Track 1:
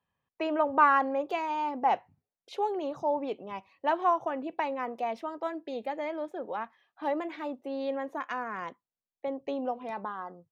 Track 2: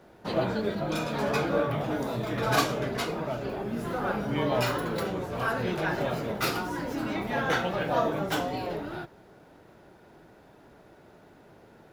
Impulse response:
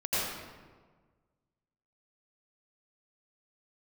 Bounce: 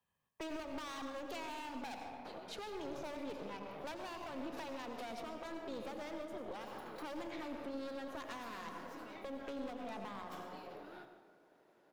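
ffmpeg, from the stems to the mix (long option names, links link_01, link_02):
-filter_complex "[0:a]highshelf=frequency=5200:gain=8,alimiter=limit=-20.5dB:level=0:latency=1:release=169,volume=31.5dB,asoftclip=hard,volume=-31.5dB,volume=-2.5dB,asplit=3[link_01][link_02][link_03];[link_02]volume=-12dB[link_04];[1:a]highpass=290,acompressor=threshold=-33dB:ratio=6,adelay=2000,volume=-12dB,asplit=2[link_05][link_06];[link_06]volume=-15.5dB[link_07];[link_03]apad=whole_len=614291[link_08];[link_05][link_08]sidechaincompress=threshold=-48dB:ratio=8:attack=16:release=130[link_09];[2:a]atrim=start_sample=2205[link_10];[link_04][link_07]amix=inputs=2:normalize=0[link_11];[link_11][link_10]afir=irnorm=-1:irlink=0[link_12];[link_01][link_09][link_12]amix=inputs=3:normalize=0,acrossover=split=280|3000[link_13][link_14][link_15];[link_14]acompressor=threshold=-41dB:ratio=6[link_16];[link_13][link_16][link_15]amix=inputs=3:normalize=0,aeval=exprs='(tanh(63.1*val(0)+0.65)-tanh(0.65))/63.1':channel_layout=same"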